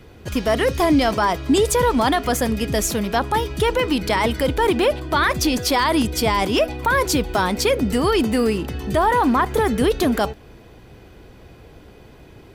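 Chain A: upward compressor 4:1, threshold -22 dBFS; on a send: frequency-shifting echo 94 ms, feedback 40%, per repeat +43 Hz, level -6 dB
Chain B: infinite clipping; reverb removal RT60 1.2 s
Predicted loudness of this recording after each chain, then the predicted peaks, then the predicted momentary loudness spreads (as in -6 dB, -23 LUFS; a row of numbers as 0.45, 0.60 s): -18.5, -22.0 LUFS; -4.5, -16.0 dBFS; 15, 3 LU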